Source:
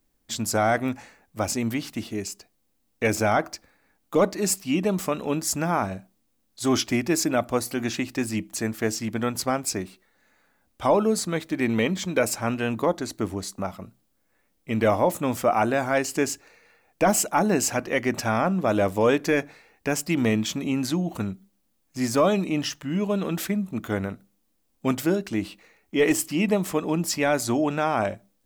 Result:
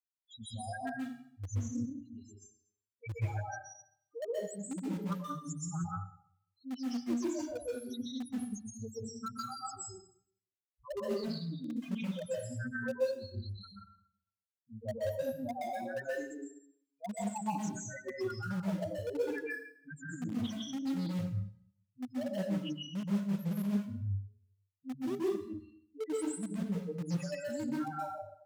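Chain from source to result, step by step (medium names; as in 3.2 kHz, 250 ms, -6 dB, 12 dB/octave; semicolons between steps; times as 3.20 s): expander on every frequency bin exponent 3; de-hum 138 Hz, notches 3; reverse; compression 10:1, threshold -36 dBFS, peak gain reduction 17.5 dB; reverse; loudest bins only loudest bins 2; in parallel at -12 dB: word length cut 6-bit, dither none; on the sum: plate-style reverb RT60 0.63 s, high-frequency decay 0.9×, pre-delay 115 ms, DRR -5.5 dB; loudspeaker Doppler distortion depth 0.22 ms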